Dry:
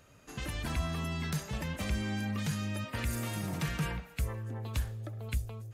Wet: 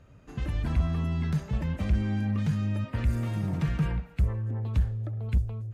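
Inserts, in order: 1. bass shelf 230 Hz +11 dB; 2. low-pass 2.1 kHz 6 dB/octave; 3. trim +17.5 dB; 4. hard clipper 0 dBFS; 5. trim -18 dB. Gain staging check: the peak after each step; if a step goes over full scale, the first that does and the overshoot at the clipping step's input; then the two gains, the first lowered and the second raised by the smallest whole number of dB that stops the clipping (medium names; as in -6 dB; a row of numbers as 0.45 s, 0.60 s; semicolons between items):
-13.5 dBFS, -13.5 dBFS, +4.0 dBFS, 0.0 dBFS, -18.0 dBFS; step 3, 4.0 dB; step 3 +13.5 dB, step 5 -14 dB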